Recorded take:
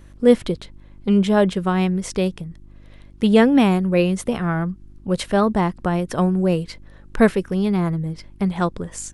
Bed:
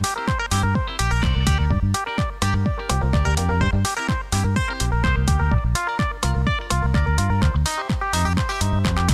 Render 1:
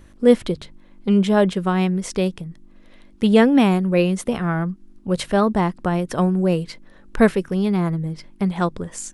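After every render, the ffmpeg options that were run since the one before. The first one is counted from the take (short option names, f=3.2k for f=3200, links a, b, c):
-af "bandreject=f=50:t=h:w=4,bandreject=f=100:t=h:w=4,bandreject=f=150:t=h:w=4"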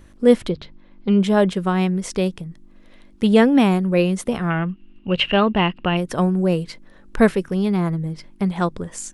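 -filter_complex "[0:a]asettb=1/sr,asplit=3[a][b][c];[a]atrim=end=0.494[d];[b]atrim=start=0.49:end=1.2,asetpts=PTS-STARTPTS,afade=t=in:d=0.004:c=qsin,afade=t=out:st=0.706:d=0.004:c=qsin,lowpass=f=5.1k:w=0.5412,lowpass=f=5.1k:w=1.3066[e];[c]atrim=start=1.196[f];[d][e]acrossfade=d=0.004:c1=hsin:c2=qsin[g];[g][f]acrossfade=d=0.004:c1=qsin:c2=hsin,asettb=1/sr,asplit=3[h][i][j];[h]atrim=end=4.504[k];[i]atrim=start=4.5:end=5.97,asetpts=PTS-STARTPTS,afade=t=in:d=0.004:c=qsin,afade=t=out:st=1.466:d=0.004:c=qsin,lowpass=f=2.8k:t=q:w=16[l];[j]atrim=start=5.966[m];[k][l]acrossfade=d=0.004:c1=hsin:c2=qsin[n];[n][m]acrossfade=d=0.004:c1=qsin:c2=hsin"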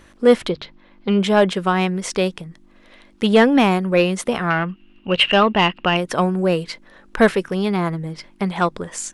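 -filter_complex "[0:a]asplit=2[a][b];[b]highpass=f=720:p=1,volume=12dB,asoftclip=type=tanh:threshold=-2dB[c];[a][c]amix=inputs=2:normalize=0,lowpass=f=5.3k:p=1,volume=-6dB"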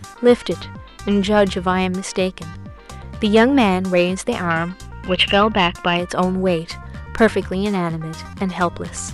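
-filter_complex "[1:a]volume=-14.5dB[a];[0:a][a]amix=inputs=2:normalize=0"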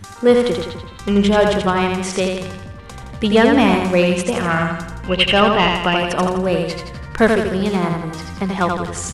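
-af "aecho=1:1:84|168|252|336|420|504|588:0.631|0.322|0.164|0.0837|0.0427|0.0218|0.0111"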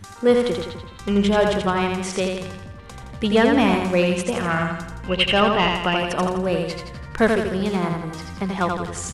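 -af "volume=-4dB"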